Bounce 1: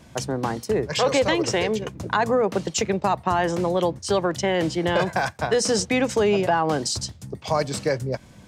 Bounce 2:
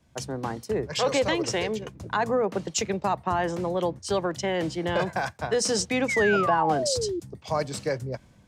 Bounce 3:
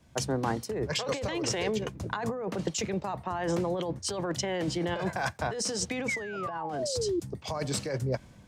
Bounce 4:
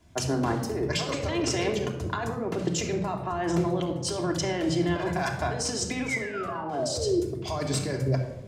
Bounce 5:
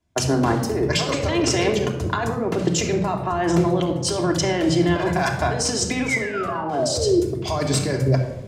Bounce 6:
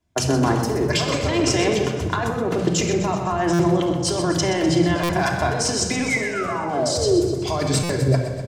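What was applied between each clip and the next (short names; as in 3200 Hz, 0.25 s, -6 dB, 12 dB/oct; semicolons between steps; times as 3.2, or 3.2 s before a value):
painted sound fall, 6.08–7.2, 330–2300 Hz -23 dBFS; three-band expander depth 40%; gain -4 dB
negative-ratio compressor -30 dBFS, ratio -1; gain -1 dB
shoebox room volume 3200 m³, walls furnished, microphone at 3.1 m
gate with hold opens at -31 dBFS; gain +7 dB
on a send: feedback echo 0.126 s, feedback 60%, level -10 dB; on the sum: stuck buffer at 3.53/5.03/7.83, samples 256, times 10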